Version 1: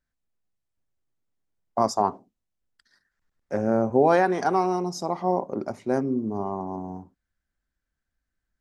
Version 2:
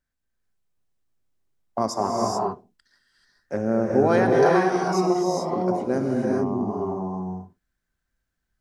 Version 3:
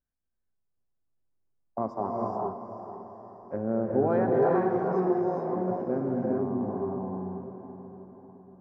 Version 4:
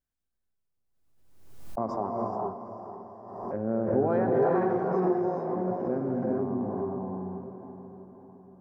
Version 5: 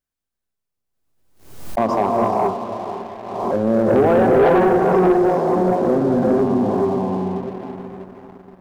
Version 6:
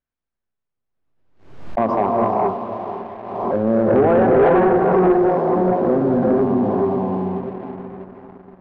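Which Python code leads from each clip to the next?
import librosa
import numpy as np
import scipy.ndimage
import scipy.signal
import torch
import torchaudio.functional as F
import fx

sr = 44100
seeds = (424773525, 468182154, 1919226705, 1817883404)

y1 = fx.rev_gated(x, sr, seeds[0], gate_ms=460, shape='rising', drr_db=-2.0)
y1 = fx.dynamic_eq(y1, sr, hz=850.0, q=1.7, threshold_db=-33.0, ratio=4.0, max_db=-5)
y2 = scipy.signal.sosfilt(scipy.signal.butter(2, 1100.0, 'lowpass', fs=sr, output='sos'), y1)
y2 = fx.echo_diffused(y2, sr, ms=477, feedback_pct=51, wet_db=-9.5)
y2 = y2 * 10.0 ** (-5.5 / 20.0)
y3 = fx.pre_swell(y2, sr, db_per_s=49.0)
y3 = y3 * 10.0 ** (-1.0 / 20.0)
y4 = fx.low_shelf(y3, sr, hz=150.0, db=-5.5)
y4 = fx.leveller(y4, sr, passes=2)
y4 = y4 * 10.0 ** (7.0 / 20.0)
y5 = scipy.signal.sosfilt(scipy.signal.butter(2, 2400.0, 'lowpass', fs=sr, output='sos'), y4)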